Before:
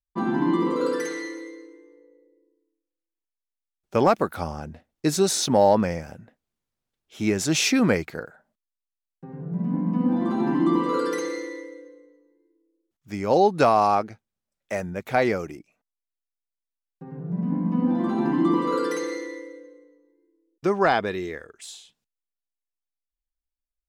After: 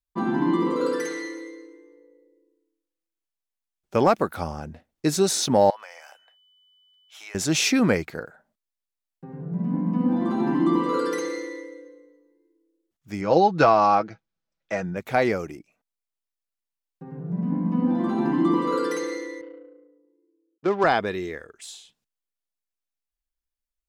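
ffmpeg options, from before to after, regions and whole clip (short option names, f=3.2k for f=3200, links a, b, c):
-filter_complex "[0:a]asettb=1/sr,asplit=3[a][b][c];[a]atrim=end=5.704[d];[b]atrim=start=5.7:end=7.35,asetpts=PTS-STARTPTS,afade=t=in:d=0.004:c=qsin,afade=t=out:st=1.646:d=0.004:c=qsin,highpass=f=770:w=0.5412,highpass=f=770:w=1.3066,acompressor=threshold=-41dB:ratio=2.5:attack=3.2:release=140:knee=1:detection=peak,aeval=exprs='val(0)+0.00112*sin(2*PI*3000*n/s)':c=same[e];[c]atrim=start=7.346[f];[d][e]acrossfade=d=0.004:c1=hsin:c2=qsin[g];[g][f]acrossfade=d=0.004:c1=qsin:c2=hsin,asettb=1/sr,asplit=3[h][i][j];[h]atrim=end=13.214[k];[i]atrim=start=13.21:end=14.97,asetpts=PTS-STARTPTS,afade=t=in:d=0.004:c=qsin,afade=t=out:st=1.756:d=0.004:c=qsin,lowpass=f=6.1k:w=0.5412,lowpass=f=6.1k:w=1.3066,equalizer=f=1.4k:w=5.7:g=4,aecho=1:1:6.1:0.51,atrim=end_sample=77616[l];[j]atrim=start=14.966[m];[k][l]acrossfade=d=0.004:c1=hsin:c2=qsin[n];[n][m]acrossfade=d=0.004:c1=qsin:c2=hsin,asettb=1/sr,asplit=3[o][p][q];[o]atrim=end=19.414[r];[p]atrim=start=19.41:end=20.84,asetpts=PTS-STARTPTS,afade=t=in:d=0.004:c=qsin,afade=t=out:st=1.426:d=0.004:c=qsin,adynamicsmooth=sensitivity=4.5:basefreq=820,highpass=200,lowpass=7.4k[s];[q]atrim=start=20.836[t];[r][s]acrossfade=d=0.004:c1=hsin:c2=qsin[u];[u][t]acrossfade=d=0.004:c1=qsin:c2=hsin"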